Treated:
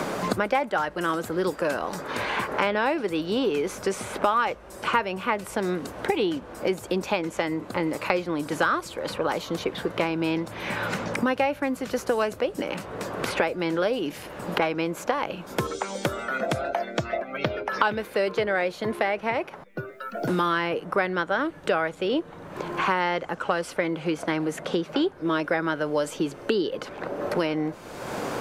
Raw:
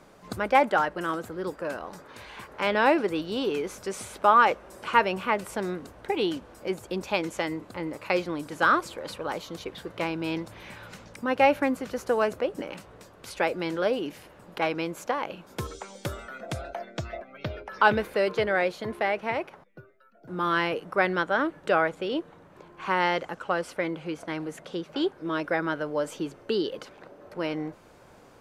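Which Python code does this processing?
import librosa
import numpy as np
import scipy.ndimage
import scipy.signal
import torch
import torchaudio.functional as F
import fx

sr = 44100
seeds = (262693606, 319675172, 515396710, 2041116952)

y = fx.band_squash(x, sr, depth_pct=100)
y = F.gain(torch.from_numpy(y), 1.5).numpy()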